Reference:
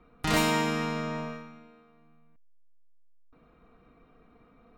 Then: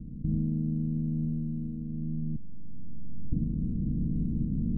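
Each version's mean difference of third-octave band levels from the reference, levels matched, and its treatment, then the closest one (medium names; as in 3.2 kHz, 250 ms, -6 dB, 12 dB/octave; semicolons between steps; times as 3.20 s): 17.5 dB: spectral levelling over time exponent 0.4; recorder AGC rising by 8.4 dB/s; inverse Chebyshev low-pass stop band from 1 kHz, stop band 70 dB; trim +2 dB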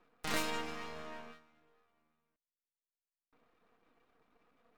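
4.0 dB: reverb removal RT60 0.68 s; high-pass 300 Hz 12 dB/octave; half-wave rectifier; trim -4 dB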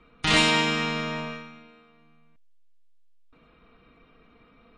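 3.0 dB: peaking EQ 3.1 kHz +10.5 dB 1.4 oct; band-stop 730 Hz, Q 16; trim +1.5 dB; MP3 40 kbps 22.05 kHz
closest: third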